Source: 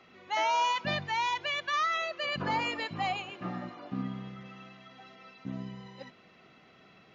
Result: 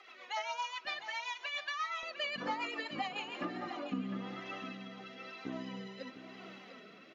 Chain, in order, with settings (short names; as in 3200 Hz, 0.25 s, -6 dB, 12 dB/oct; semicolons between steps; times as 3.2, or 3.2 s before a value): HPF 750 Hz 12 dB/oct, from 2.03 s 250 Hz; compressor 6:1, threshold -41 dBFS, peak gain reduction 14.5 dB; rotary speaker horn 7.5 Hz, later 1 Hz, at 2.92; flange 1.1 Hz, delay 2.4 ms, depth 2.5 ms, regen +23%; echo 0.703 s -11 dB; gain +11 dB